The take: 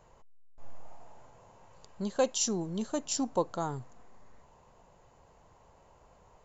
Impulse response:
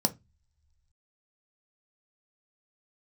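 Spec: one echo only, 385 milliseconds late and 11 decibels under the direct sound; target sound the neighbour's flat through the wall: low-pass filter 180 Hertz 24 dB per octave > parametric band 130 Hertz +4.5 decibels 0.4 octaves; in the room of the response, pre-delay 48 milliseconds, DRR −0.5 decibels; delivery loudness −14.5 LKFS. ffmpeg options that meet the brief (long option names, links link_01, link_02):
-filter_complex "[0:a]aecho=1:1:385:0.282,asplit=2[link_01][link_02];[1:a]atrim=start_sample=2205,adelay=48[link_03];[link_02][link_03]afir=irnorm=-1:irlink=0,volume=-6.5dB[link_04];[link_01][link_04]amix=inputs=2:normalize=0,lowpass=frequency=180:width=0.5412,lowpass=frequency=180:width=1.3066,equalizer=frequency=130:width_type=o:width=0.4:gain=4.5,volume=19dB"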